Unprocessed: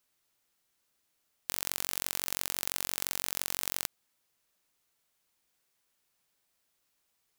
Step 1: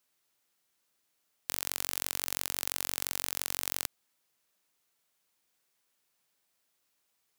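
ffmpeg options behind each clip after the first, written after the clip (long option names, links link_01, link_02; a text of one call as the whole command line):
ffmpeg -i in.wav -af "lowshelf=frequency=71:gain=-11.5" out.wav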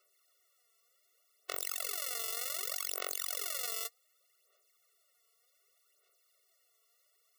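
ffmpeg -i in.wav -af "aphaser=in_gain=1:out_gain=1:delay=4.5:decay=0.61:speed=0.66:type=sinusoidal,asoftclip=type=tanh:threshold=-15dB,afftfilt=real='re*eq(mod(floor(b*sr/1024/370),2),1)':imag='im*eq(mod(floor(b*sr/1024/370),2),1)':win_size=1024:overlap=0.75,volume=5dB" out.wav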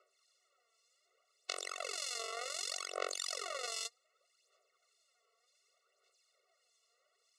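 ffmpeg -i in.wav -filter_complex "[0:a]aphaser=in_gain=1:out_gain=1:delay=2.3:decay=0.24:speed=1.8:type=triangular,acrossover=split=2400[link_01][link_02];[link_01]aeval=exprs='val(0)*(1-0.7/2+0.7/2*cos(2*PI*1.7*n/s))':channel_layout=same[link_03];[link_02]aeval=exprs='val(0)*(1-0.7/2-0.7/2*cos(2*PI*1.7*n/s))':channel_layout=same[link_04];[link_03][link_04]amix=inputs=2:normalize=0,highpass=360,equalizer=frequency=1700:width_type=q:width=4:gain=-9,equalizer=frequency=3200:width_type=q:width=4:gain=-6,equalizer=frequency=5700:width_type=q:width=4:gain=-5,lowpass=frequency=7000:width=0.5412,lowpass=frequency=7000:width=1.3066,volume=7dB" out.wav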